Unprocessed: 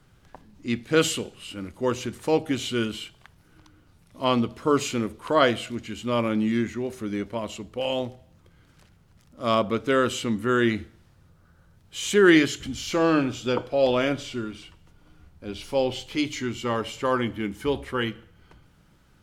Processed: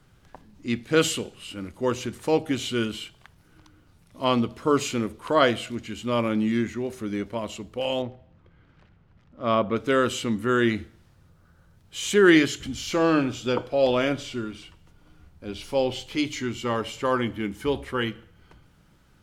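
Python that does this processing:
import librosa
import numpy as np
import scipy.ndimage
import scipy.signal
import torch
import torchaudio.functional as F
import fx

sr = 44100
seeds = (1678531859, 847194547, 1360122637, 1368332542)

y = fx.lowpass(x, sr, hz=2700.0, slope=12, at=(8.02, 9.76))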